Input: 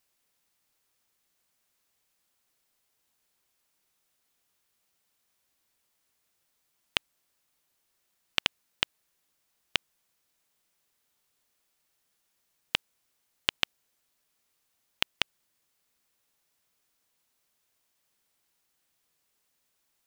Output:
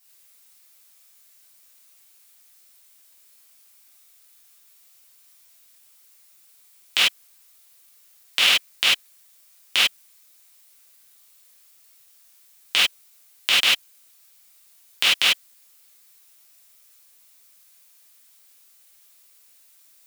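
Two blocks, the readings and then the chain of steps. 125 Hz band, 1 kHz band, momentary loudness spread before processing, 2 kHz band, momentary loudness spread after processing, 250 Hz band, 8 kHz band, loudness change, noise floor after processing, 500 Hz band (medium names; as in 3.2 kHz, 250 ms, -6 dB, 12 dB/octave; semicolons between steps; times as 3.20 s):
no reading, +9.5 dB, 3 LU, +13.0 dB, 8 LU, +3.0 dB, +17.0 dB, +13.0 dB, -56 dBFS, +6.5 dB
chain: high-pass 52 Hz; tilt EQ +3 dB/octave; gated-style reverb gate 120 ms flat, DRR -7.5 dB; loudness maximiser +3.5 dB; trim -1 dB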